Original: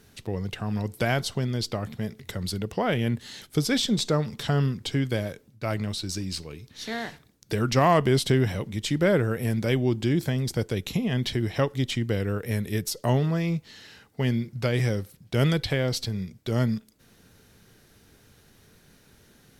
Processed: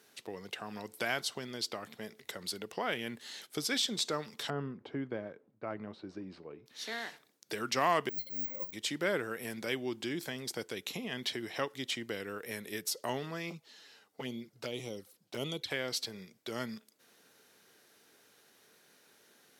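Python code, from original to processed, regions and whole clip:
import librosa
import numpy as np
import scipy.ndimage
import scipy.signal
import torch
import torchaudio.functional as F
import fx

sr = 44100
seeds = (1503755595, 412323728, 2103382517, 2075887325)

y = fx.chain(x, sr, fx.lowpass(hz=1200.0, slope=12),
    fx.low_shelf(hz=390.0, db=4.5), at=(4.5, 6.66))
y = fx.chain(y, sr, fx.over_compress(threshold_db=-25.0, ratio=-0.5),
    fx.octave_resonator(note='C', decay_s=0.15),
    fx.resample_bad(factor=2, down='filtered', up='zero_stuff'), at=(8.09, 8.73))
y = fx.chain(y, sr, fx.peak_eq(hz=2000.0, db=-4.5, octaves=0.99),
    fx.env_flanger(rest_ms=12.0, full_db=-21.0), at=(13.5, 15.71))
y = scipy.signal.sosfilt(scipy.signal.butter(2, 400.0, 'highpass', fs=sr, output='sos'), y)
y = fx.dynamic_eq(y, sr, hz=580.0, q=1.1, threshold_db=-40.0, ratio=4.0, max_db=-6)
y = y * librosa.db_to_amplitude(-4.0)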